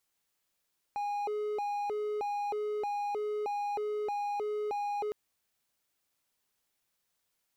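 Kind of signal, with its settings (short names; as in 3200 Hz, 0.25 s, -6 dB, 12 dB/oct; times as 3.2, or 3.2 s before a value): siren hi-lo 421–820 Hz 1.6/s triangle -29 dBFS 4.16 s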